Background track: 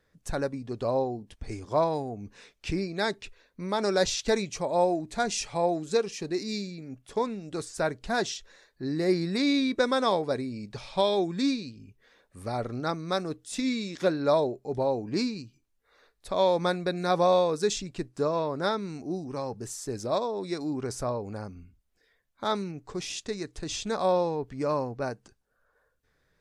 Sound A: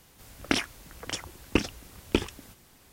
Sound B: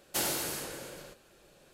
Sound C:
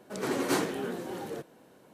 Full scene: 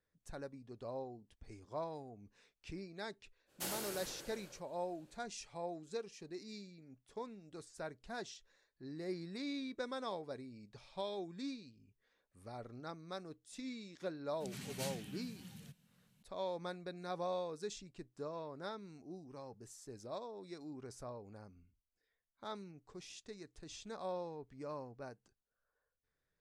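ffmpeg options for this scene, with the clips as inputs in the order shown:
-filter_complex "[0:a]volume=0.141[s0];[3:a]firequalizer=gain_entry='entry(190,0);entry(320,-28);entry(2600,-4)':delay=0.05:min_phase=1[s1];[2:a]atrim=end=1.73,asetpts=PTS-STARTPTS,volume=0.299,afade=t=in:d=0.05,afade=t=out:st=1.68:d=0.05,adelay=3460[s2];[s1]atrim=end=1.93,asetpts=PTS-STARTPTS,volume=0.562,afade=t=in:d=0.004:c=hsin,afade=t=out:st=1.926:d=0.004:c=hsin,adelay=14300[s3];[s0][s2][s3]amix=inputs=3:normalize=0"

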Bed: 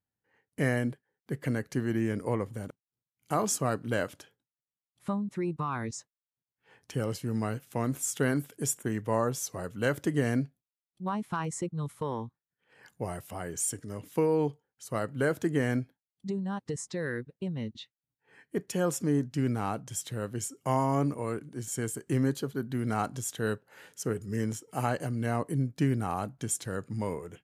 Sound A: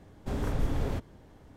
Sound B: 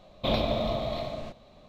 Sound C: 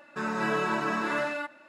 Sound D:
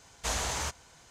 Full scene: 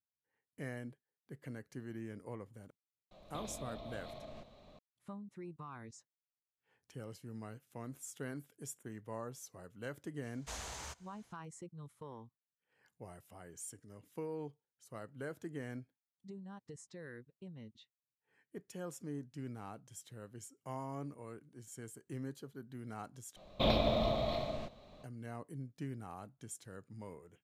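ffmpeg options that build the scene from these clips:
-filter_complex "[2:a]asplit=2[s0][s1];[0:a]volume=0.158[s2];[s0]acompressor=threshold=0.01:ratio=6:attack=3.2:release=140:knee=1:detection=peak[s3];[s2]asplit=2[s4][s5];[s4]atrim=end=23.364[s6];[s1]atrim=end=1.68,asetpts=PTS-STARTPTS,volume=0.668[s7];[s5]atrim=start=25.036[s8];[s3]atrim=end=1.68,asetpts=PTS-STARTPTS,volume=0.531,afade=t=in:d=0.004:c=hsin,afade=t=out:st=1.676:d=0.004:c=hsin,adelay=3110[s9];[4:a]atrim=end=1.1,asetpts=PTS-STARTPTS,volume=0.224,afade=t=in:d=0.004:c=hsin,afade=t=out:st=1.096:d=0.004:c=hsin,adelay=10230[s10];[s6][s7]acrossfade=d=0.004:c1=hsin:c2=hsin[s11];[s11][s8]acrossfade=d=0.004:c1=hsin:c2=hsin[s12];[s12][s9][s10]amix=inputs=3:normalize=0"

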